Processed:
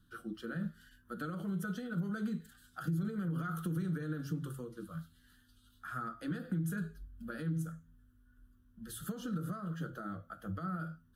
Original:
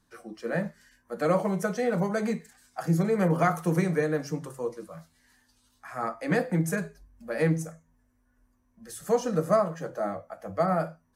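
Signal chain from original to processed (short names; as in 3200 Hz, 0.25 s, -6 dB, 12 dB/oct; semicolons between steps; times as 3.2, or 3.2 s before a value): limiter -23 dBFS, peak gain reduction 11.5 dB; compressor 4:1, threshold -35 dBFS, peak gain reduction 8 dB; EQ curve 120 Hz 0 dB, 330 Hz -6 dB, 600 Hz -21 dB, 960 Hz -23 dB, 1400 Hz +1 dB, 2200 Hz -24 dB, 3200 Hz 0 dB, 5600 Hz -17 dB, 8300 Hz -13 dB, 12000 Hz -5 dB; gain +5.5 dB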